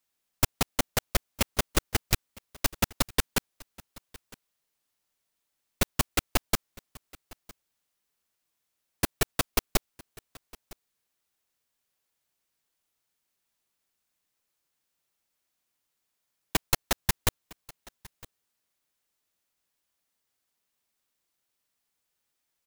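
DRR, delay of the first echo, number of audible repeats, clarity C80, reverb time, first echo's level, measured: no reverb audible, 959 ms, 1, no reverb audible, no reverb audible, −23.0 dB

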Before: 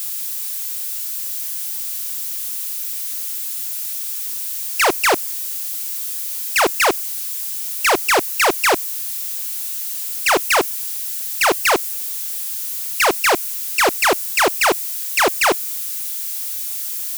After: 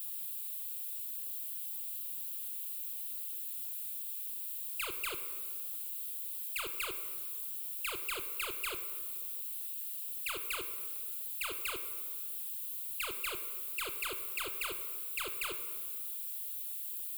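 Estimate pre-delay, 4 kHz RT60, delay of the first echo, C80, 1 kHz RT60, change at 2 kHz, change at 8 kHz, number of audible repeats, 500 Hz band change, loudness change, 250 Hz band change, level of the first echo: 22 ms, 1.2 s, no echo audible, 11.5 dB, 1.9 s, −22.5 dB, −20.0 dB, no echo audible, −28.0 dB, −17.5 dB, −27.0 dB, no echo audible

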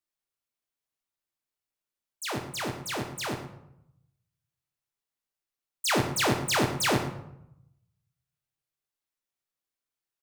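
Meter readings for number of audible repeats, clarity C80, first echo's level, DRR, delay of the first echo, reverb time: 1, 9.5 dB, −13.5 dB, 4.5 dB, 112 ms, 0.85 s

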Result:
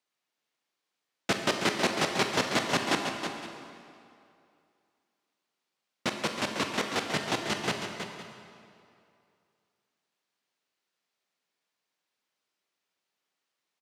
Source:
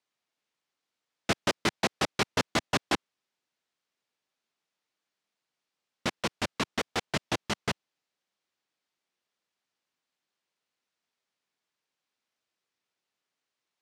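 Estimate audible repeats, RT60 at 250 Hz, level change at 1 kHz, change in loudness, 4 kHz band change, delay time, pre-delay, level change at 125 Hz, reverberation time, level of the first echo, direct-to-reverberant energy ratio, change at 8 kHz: 3, 2.3 s, +2.0 dB, +1.0 dB, +2.0 dB, 42 ms, 20 ms, −1.0 dB, 2.5 s, −14.0 dB, 2.0 dB, +2.0 dB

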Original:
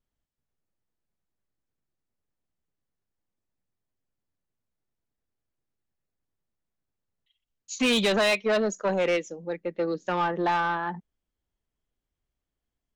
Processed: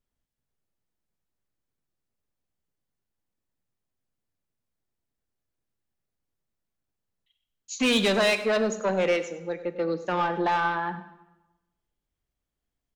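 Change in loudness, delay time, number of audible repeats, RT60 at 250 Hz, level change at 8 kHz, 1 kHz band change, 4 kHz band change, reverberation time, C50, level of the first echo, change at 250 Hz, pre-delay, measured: +0.5 dB, 100 ms, 1, 1.1 s, +0.5 dB, +0.5 dB, +0.5 dB, 1.0 s, 11.5 dB, −15.5 dB, +0.5 dB, 17 ms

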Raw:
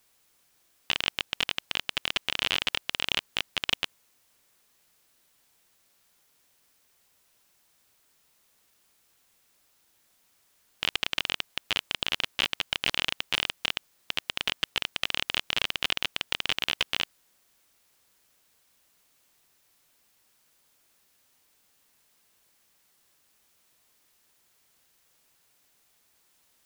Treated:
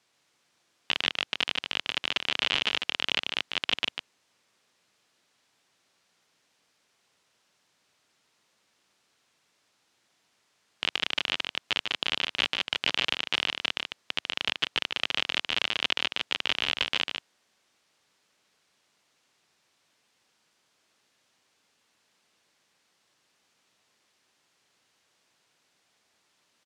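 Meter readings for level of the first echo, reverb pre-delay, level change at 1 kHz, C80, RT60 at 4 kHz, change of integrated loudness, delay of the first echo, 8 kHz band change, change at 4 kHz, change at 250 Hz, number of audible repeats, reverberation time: −5.5 dB, no reverb audible, +1.0 dB, no reverb audible, no reverb audible, +0.5 dB, 148 ms, −3.5 dB, +1.0 dB, +1.0 dB, 1, no reverb audible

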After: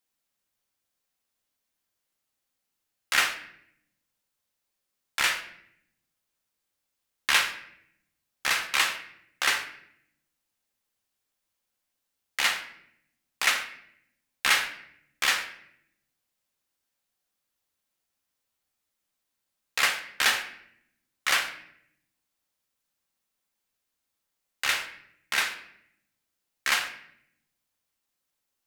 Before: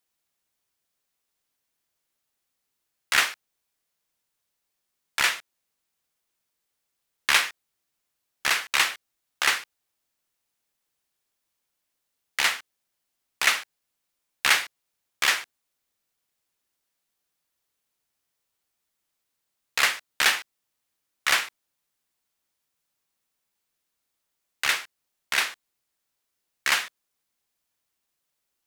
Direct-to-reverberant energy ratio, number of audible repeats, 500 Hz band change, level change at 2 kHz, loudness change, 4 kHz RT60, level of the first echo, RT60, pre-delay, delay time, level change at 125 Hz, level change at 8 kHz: 4.5 dB, no echo audible, −1.5 dB, −2.0 dB, −2.0 dB, 0.55 s, no echo audible, 0.70 s, 4 ms, no echo audible, can't be measured, −2.0 dB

